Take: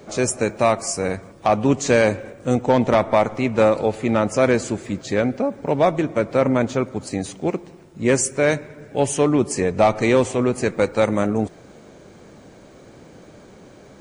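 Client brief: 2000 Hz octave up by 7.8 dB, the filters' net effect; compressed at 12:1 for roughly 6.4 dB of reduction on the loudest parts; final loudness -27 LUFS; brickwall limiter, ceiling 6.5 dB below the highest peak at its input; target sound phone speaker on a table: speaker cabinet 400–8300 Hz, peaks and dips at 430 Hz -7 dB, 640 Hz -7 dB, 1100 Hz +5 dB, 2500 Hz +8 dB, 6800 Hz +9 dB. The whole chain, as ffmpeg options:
-af "equalizer=f=2k:t=o:g=5,acompressor=threshold=-17dB:ratio=12,alimiter=limit=-13dB:level=0:latency=1,highpass=f=400:w=0.5412,highpass=f=400:w=1.3066,equalizer=f=430:t=q:w=4:g=-7,equalizer=f=640:t=q:w=4:g=-7,equalizer=f=1.1k:t=q:w=4:g=5,equalizer=f=2.5k:t=q:w=4:g=8,equalizer=f=6.8k:t=q:w=4:g=9,lowpass=f=8.3k:w=0.5412,lowpass=f=8.3k:w=1.3066,volume=-0.5dB"

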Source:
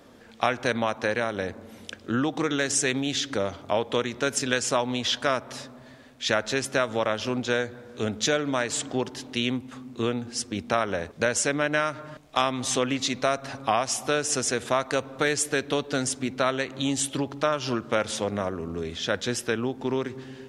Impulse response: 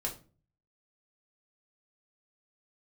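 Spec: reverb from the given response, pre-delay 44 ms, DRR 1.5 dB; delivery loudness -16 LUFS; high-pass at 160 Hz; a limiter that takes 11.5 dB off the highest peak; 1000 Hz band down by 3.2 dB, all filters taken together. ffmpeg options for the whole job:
-filter_complex "[0:a]highpass=160,equalizer=f=1k:t=o:g=-4.5,alimiter=limit=-21dB:level=0:latency=1,asplit=2[a][b];[1:a]atrim=start_sample=2205,adelay=44[c];[b][c]afir=irnorm=-1:irlink=0,volume=-4dB[d];[a][d]amix=inputs=2:normalize=0,volume=14dB"

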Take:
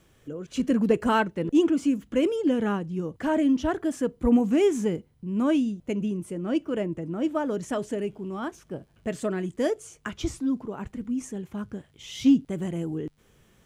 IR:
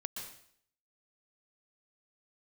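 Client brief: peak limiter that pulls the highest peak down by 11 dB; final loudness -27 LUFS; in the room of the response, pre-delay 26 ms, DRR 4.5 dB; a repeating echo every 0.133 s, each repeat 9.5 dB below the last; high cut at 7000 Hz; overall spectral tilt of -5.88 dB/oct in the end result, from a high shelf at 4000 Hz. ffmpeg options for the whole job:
-filter_complex "[0:a]lowpass=7k,highshelf=f=4k:g=6,alimiter=limit=-21.5dB:level=0:latency=1,aecho=1:1:133|266|399|532:0.335|0.111|0.0365|0.012,asplit=2[a][b];[1:a]atrim=start_sample=2205,adelay=26[c];[b][c]afir=irnorm=-1:irlink=0,volume=-4dB[d];[a][d]amix=inputs=2:normalize=0,volume=2.5dB"

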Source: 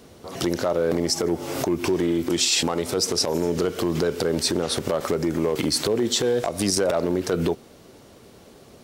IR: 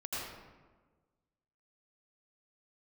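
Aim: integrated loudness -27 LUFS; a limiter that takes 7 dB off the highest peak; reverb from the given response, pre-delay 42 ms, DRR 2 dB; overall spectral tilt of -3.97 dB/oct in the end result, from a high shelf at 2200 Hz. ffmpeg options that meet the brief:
-filter_complex "[0:a]highshelf=f=2.2k:g=3.5,alimiter=limit=-14dB:level=0:latency=1,asplit=2[a][b];[1:a]atrim=start_sample=2205,adelay=42[c];[b][c]afir=irnorm=-1:irlink=0,volume=-5dB[d];[a][d]amix=inputs=2:normalize=0,volume=-4.5dB"

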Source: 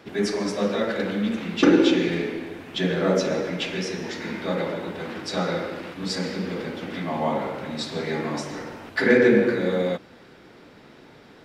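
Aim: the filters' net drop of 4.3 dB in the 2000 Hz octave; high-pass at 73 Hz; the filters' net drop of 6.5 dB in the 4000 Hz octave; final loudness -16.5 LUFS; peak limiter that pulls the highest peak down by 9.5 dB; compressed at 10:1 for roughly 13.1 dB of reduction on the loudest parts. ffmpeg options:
-af "highpass=73,equalizer=f=2k:t=o:g=-4,equalizer=f=4k:t=o:g=-7,acompressor=threshold=-26dB:ratio=10,volume=17.5dB,alimiter=limit=-7.5dB:level=0:latency=1"

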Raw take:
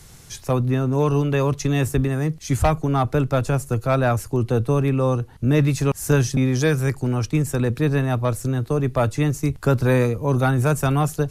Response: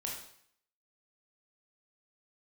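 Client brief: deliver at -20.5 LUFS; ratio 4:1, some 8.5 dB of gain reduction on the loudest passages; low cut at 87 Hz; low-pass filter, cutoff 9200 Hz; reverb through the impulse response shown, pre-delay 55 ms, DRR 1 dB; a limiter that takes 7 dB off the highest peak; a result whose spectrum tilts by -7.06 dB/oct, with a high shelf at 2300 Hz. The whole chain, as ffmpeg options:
-filter_complex "[0:a]highpass=87,lowpass=9.2k,highshelf=f=2.3k:g=-4,acompressor=threshold=-24dB:ratio=4,alimiter=limit=-20dB:level=0:latency=1,asplit=2[a][b];[1:a]atrim=start_sample=2205,adelay=55[c];[b][c]afir=irnorm=-1:irlink=0,volume=-2dB[d];[a][d]amix=inputs=2:normalize=0,volume=6.5dB"

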